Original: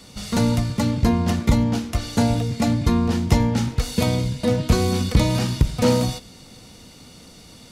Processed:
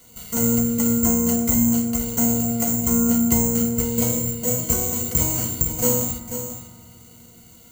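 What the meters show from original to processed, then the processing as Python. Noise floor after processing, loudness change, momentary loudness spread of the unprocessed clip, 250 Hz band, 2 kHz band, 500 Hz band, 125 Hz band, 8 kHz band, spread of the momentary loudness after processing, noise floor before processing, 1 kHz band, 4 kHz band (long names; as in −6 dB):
−48 dBFS, +1.5 dB, 4 LU, +0.5 dB, −6.5 dB, −2.5 dB, −7.0 dB, +12.5 dB, 6 LU, −46 dBFS, −5.5 dB, −8.5 dB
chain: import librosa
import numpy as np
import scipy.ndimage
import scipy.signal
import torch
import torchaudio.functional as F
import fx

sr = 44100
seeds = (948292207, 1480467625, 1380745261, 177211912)

p1 = fx.hum_notches(x, sr, base_hz=50, count=7)
p2 = (np.kron(scipy.signal.resample_poly(p1, 1, 6), np.eye(6)[0]) * 6)[:len(p1)]
p3 = fx.ripple_eq(p2, sr, per_octave=1.9, db=10)
p4 = p3 + fx.echo_single(p3, sr, ms=490, db=-10.0, dry=0)
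p5 = fx.rev_fdn(p4, sr, rt60_s=2.4, lf_ratio=1.6, hf_ratio=0.3, size_ms=13.0, drr_db=8.5)
y = p5 * 10.0 ** (-9.0 / 20.0)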